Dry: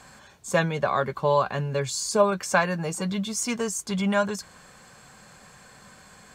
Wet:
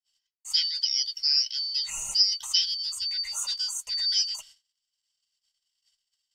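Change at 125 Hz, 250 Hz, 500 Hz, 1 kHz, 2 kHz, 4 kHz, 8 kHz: under -35 dB, under -40 dB, under -40 dB, -27.0 dB, -16.5 dB, +14.0 dB, -0.5 dB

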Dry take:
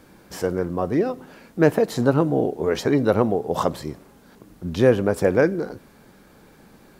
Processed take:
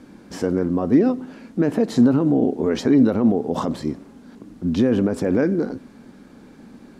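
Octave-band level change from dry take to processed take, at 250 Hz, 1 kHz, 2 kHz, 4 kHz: +6.0, -4.0, -5.5, -1.0 dB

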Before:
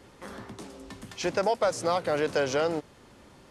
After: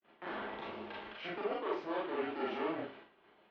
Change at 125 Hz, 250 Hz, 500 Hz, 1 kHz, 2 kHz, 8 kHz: -17.0 dB, -6.0 dB, -11.0 dB, -9.0 dB, -8.0 dB, under -35 dB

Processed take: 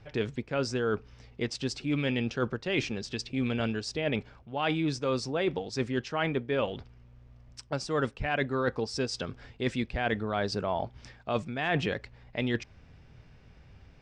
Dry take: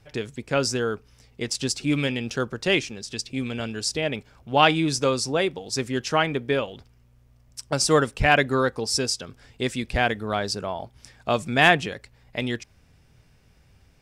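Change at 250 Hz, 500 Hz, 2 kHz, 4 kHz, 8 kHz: -4.0, -6.0, -9.0, -10.0, -15.0 dB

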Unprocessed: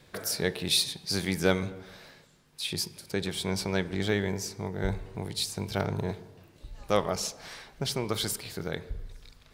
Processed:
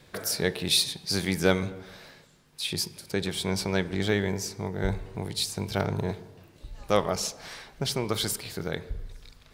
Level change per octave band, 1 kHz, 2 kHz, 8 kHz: +2.0, +2.0, +2.0 dB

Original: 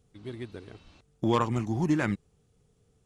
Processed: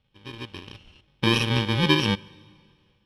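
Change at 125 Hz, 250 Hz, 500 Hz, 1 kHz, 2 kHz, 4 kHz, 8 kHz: +5.5, +2.5, +2.5, +2.0, +10.5, +20.5, +9.0 dB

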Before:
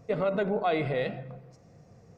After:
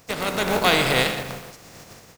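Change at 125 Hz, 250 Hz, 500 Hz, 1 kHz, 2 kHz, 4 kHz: +4.5, +5.5, +3.0, +8.5, +14.0, +21.5 dB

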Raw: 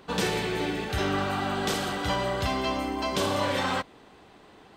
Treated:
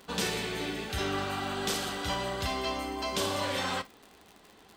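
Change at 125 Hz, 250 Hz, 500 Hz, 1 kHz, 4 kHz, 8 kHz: -6.0, -6.0, -5.0, -5.0, -1.5, +0.5 dB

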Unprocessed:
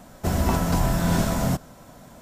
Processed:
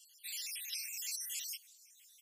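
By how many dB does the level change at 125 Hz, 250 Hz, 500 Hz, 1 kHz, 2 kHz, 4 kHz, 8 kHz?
under -40 dB, under -40 dB, under -40 dB, under -40 dB, -15.5 dB, -5.5 dB, -5.0 dB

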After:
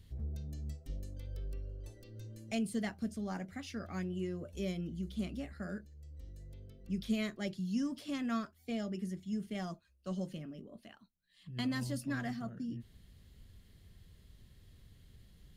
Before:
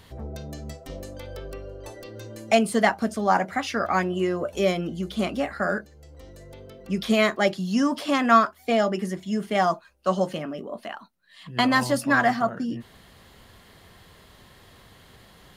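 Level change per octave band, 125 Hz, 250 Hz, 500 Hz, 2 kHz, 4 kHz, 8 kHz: -7.0, -11.0, -20.0, -20.5, -16.0, -14.0 dB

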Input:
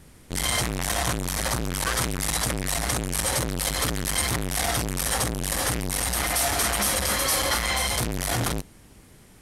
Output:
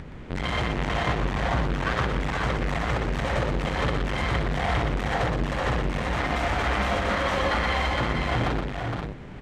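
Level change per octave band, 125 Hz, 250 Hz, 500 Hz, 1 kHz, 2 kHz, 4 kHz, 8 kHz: +3.0, +2.5, +3.0, +2.5, +1.0, -6.0, -21.5 dB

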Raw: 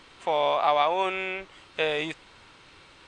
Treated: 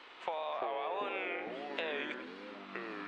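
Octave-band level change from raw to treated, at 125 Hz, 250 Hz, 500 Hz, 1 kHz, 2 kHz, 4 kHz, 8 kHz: -14.0 dB, -6.0 dB, -11.5 dB, -13.5 dB, -8.0 dB, -12.0 dB, n/a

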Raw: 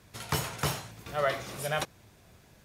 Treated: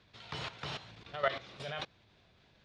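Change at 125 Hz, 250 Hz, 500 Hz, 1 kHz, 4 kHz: -11.5, -11.0, -6.5, -6.5, -4.5 dB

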